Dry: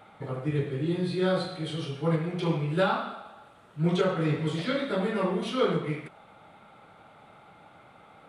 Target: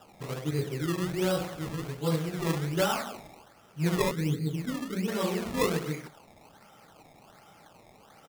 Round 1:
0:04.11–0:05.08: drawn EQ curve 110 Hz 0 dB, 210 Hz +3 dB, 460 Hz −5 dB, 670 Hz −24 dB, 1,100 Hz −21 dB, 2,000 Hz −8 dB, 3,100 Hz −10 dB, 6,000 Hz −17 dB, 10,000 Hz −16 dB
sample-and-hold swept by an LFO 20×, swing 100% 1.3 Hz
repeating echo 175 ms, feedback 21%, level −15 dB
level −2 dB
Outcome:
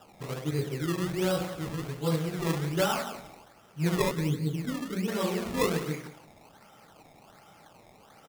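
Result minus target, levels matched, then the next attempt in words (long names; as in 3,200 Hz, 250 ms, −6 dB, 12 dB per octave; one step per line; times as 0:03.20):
echo-to-direct +11.5 dB
0:04.11–0:05.08: drawn EQ curve 110 Hz 0 dB, 210 Hz +3 dB, 460 Hz −5 dB, 670 Hz −24 dB, 1,100 Hz −21 dB, 2,000 Hz −8 dB, 3,100 Hz −10 dB, 6,000 Hz −17 dB, 10,000 Hz −16 dB
sample-and-hold swept by an LFO 20×, swing 100% 1.3 Hz
repeating echo 175 ms, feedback 21%, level −26.5 dB
level −2 dB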